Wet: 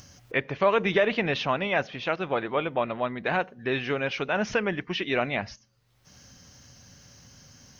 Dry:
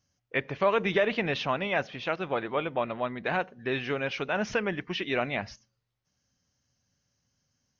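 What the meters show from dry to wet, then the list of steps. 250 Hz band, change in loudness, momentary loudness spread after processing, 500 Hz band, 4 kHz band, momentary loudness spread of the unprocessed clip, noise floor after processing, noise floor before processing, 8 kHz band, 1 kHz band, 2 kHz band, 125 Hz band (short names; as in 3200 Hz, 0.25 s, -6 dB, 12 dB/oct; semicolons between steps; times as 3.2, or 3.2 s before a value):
+2.5 dB, +2.5 dB, 7 LU, +2.5 dB, +2.5 dB, 7 LU, -63 dBFS, -80 dBFS, n/a, +2.5 dB, +2.5 dB, +2.5 dB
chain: upward compressor, threshold -36 dBFS; gain +2.5 dB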